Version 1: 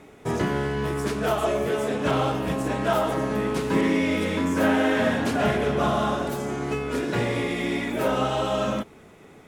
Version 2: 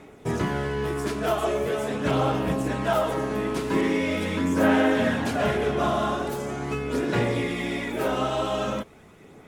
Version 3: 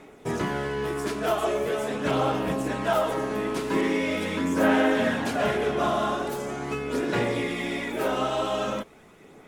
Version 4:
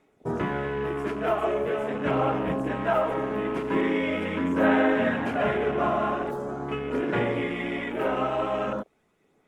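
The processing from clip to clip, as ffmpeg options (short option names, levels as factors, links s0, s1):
-af "aphaser=in_gain=1:out_gain=1:delay=3:decay=0.28:speed=0.42:type=sinusoidal,volume=0.841"
-af "equalizer=f=82:t=o:w=2:g=-7.5"
-af "afwtdn=0.0158"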